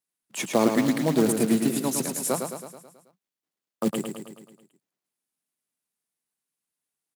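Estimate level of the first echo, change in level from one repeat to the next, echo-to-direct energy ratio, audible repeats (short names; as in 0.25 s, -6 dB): -6.0 dB, -5.0 dB, -4.5 dB, 6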